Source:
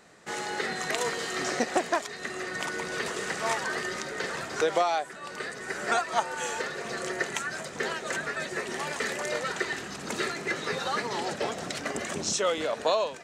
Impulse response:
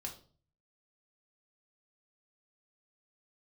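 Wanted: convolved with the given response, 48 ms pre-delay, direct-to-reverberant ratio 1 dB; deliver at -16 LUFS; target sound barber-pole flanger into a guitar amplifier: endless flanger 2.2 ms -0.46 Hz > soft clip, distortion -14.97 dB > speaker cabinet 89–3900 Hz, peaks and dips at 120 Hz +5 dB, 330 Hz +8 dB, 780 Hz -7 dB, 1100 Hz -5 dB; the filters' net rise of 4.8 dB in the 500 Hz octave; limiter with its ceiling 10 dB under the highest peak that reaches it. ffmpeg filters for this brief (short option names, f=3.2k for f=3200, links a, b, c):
-filter_complex "[0:a]equalizer=f=500:t=o:g=5.5,alimiter=limit=-18.5dB:level=0:latency=1,asplit=2[a][b];[1:a]atrim=start_sample=2205,adelay=48[c];[b][c]afir=irnorm=-1:irlink=0,volume=1dB[d];[a][d]amix=inputs=2:normalize=0,asplit=2[e][f];[f]adelay=2.2,afreqshift=-0.46[g];[e][g]amix=inputs=2:normalize=1,asoftclip=threshold=-25dB,highpass=89,equalizer=f=120:t=q:w=4:g=5,equalizer=f=330:t=q:w=4:g=8,equalizer=f=780:t=q:w=4:g=-7,equalizer=f=1.1k:t=q:w=4:g=-5,lowpass=f=3.9k:w=0.5412,lowpass=f=3.9k:w=1.3066,volume=17dB"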